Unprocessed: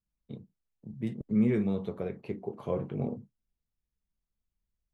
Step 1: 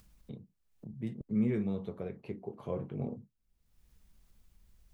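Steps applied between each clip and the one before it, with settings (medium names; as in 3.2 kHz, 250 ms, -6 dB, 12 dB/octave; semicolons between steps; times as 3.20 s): bass shelf 140 Hz +4 dB; upward compressor, threshold -35 dBFS; trim -5.5 dB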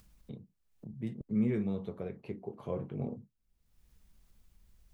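no audible change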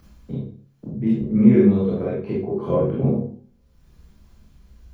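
reverberation RT60 0.45 s, pre-delay 21 ms, DRR -6 dB; trim -2.5 dB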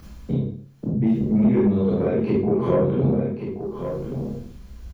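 compression 2.5:1, threshold -26 dBFS, peak gain reduction 12.5 dB; saturation -19 dBFS, distortion -18 dB; delay 1125 ms -8.5 dB; trim +8 dB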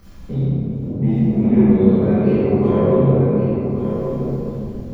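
simulated room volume 160 m³, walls hard, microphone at 1.2 m; trim -5 dB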